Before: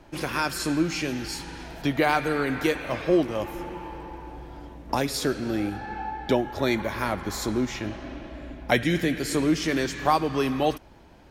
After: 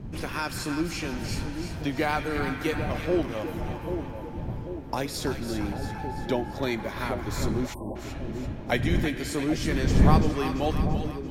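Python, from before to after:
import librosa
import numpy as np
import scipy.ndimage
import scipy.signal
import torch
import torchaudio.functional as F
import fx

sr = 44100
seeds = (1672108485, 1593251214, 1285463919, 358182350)

y = fx.dmg_wind(x, sr, seeds[0], corner_hz=150.0, level_db=-26.0)
y = fx.echo_split(y, sr, split_hz=770.0, low_ms=789, high_ms=339, feedback_pct=52, wet_db=-7.5)
y = fx.spec_erase(y, sr, start_s=7.74, length_s=0.22, low_hz=1100.0, high_hz=7800.0)
y = y * 10.0 ** (-4.5 / 20.0)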